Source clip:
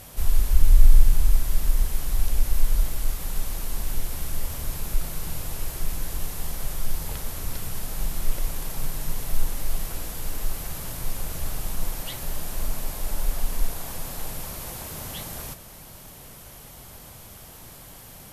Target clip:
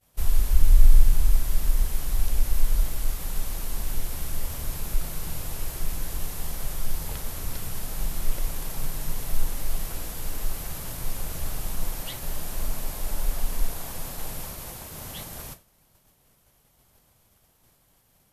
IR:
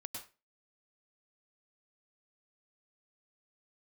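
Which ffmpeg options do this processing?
-af "agate=range=-33dB:threshold=-32dB:ratio=3:detection=peak,volume=-1dB"

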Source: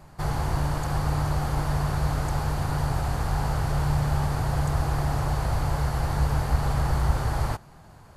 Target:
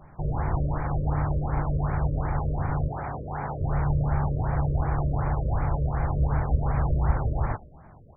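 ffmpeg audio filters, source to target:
-filter_complex "[0:a]asettb=1/sr,asplit=3[a][b][c];[a]atrim=end=2.884[d];[b]atrim=start=2.88:end=3.61,asetpts=PTS-STARTPTS,afade=t=in:d=0.004:c=qsin,afade=t=out:st=0.726:d=0.004:c=qsin,highpass=f=240:p=1[e];[c]atrim=start=3.606[f];[d][e]acrossfade=d=0.004:c1=hsin:c2=qsin[g];[g][f]acrossfade=d=0.004:c1=qsin:c2=hsin,aecho=1:1:119|238|357|476:0.075|0.0405|0.0219|0.0118,afftfilt=real='re*lt(b*sr/1024,610*pow(2500/610,0.5+0.5*sin(2*PI*2.7*pts/sr)))':imag='im*lt(b*sr/1024,610*pow(2500/610,0.5+0.5*sin(2*PI*2.7*pts/sr)))':win_size=1024:overlap=0.75"

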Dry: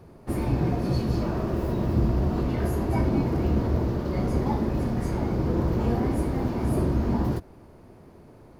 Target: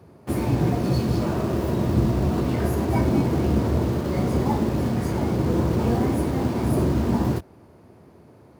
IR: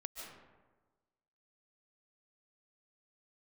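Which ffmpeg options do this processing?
-filter_complex "[0:a]highpass=f=71:w=0.5412,highpass=f=71:w=1.3066,asplit=2[a][b];[b]acrusher=bits=5:mix=0:aa=0.000001,volume=-6dB[c];[a][c]amix=inputs=2:normalize=0"

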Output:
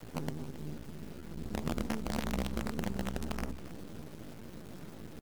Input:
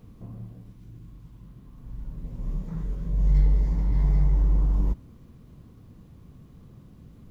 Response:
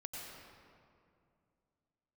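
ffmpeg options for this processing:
-filter_complex "[0:a]highpass=f=99:p=1,bandreject=f=50:t=h:w=6,bandreject=f=100:t=h:w=6,bandreject=f=150:t=h:w=6,bandreject=f=200:t=h:w=6,bandreject=f=250:t=h:w=6,bandreject=f=300:t=h:w=6,bandreject=f=350:t=h:w=6,adynamicequalizer=threshold=0.00398:dfrequency=160:dqfactor=1.2:tfrequency=160:tqfactor=1.2:attack=5:release=100:ratio=0.375:range=3.5:mode=boostabove:tftype=bell,acompressor=threshold=-39dB:ratio=16,atempo=1.4,acrusher=bits=7:dc=4:mix=0:aa=0.000001,asetrate=58866,aresample=44100,atempo=0.749154,asplit=2[a][b];[b]aecho=0:1:273:0.178[c];[a][c]amix=inputs=2:normalize=0,volume=8.5dB"

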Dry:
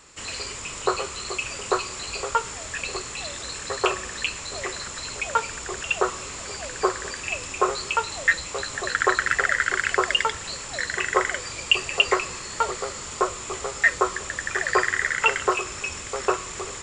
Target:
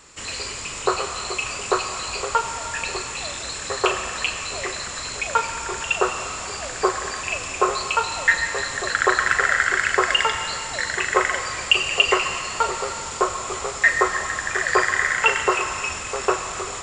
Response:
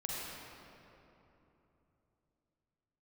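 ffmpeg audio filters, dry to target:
-filter_complex "[0:a]asplit=2[a][b];[b]highpass=f=630:w=0.5412,highpass=f=630:w=1.3066[c];[1:a]atrim=start_sample=2205,adelay=39[d];[c][d]afir=irnorm=-1:irlink=0,volume=-7dB[e];[a][e]amix=inputs=2:normalize=0,volume=2dB"

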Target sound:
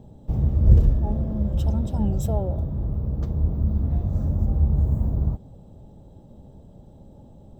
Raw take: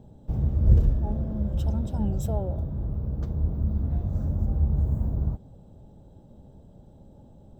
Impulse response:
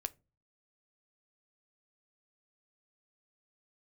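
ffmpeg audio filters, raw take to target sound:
-af "bandreject=f=1.5k:w=11,volume=3.5dB"

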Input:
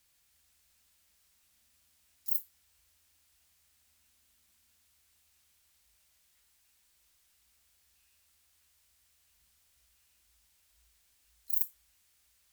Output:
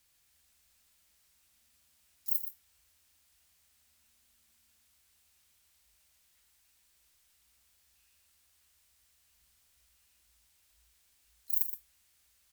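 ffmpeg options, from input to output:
-af "aecho=1:1:120:0.316"

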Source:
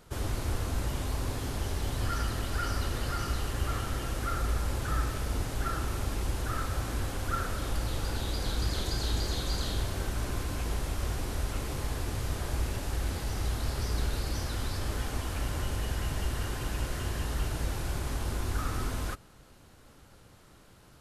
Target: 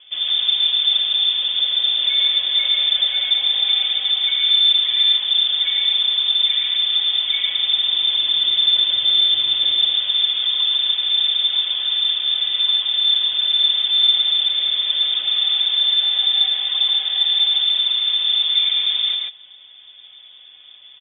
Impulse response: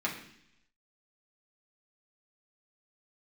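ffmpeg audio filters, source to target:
-filter_complex "[0:a]equalizer=f=140:w=0.4:g=14,bandreject=f=1.3k:w=8.3,aecho=1:1:4.3:0.86,asplit=2[a][b];[b]aecho=0:1:107.9|139.9:0.282|0.794[c];[a][c]amix=inputs=2:normalize=0,lowpass=f=3.1k:t=q:w=0.5098,lowpass=f=3.1k:t=q:w=0.6013,lowpass=f=3.1k:t=q:w=0.9,lowpass=f=3.1k:t=q:w=2.563,afreqshift=-3600"

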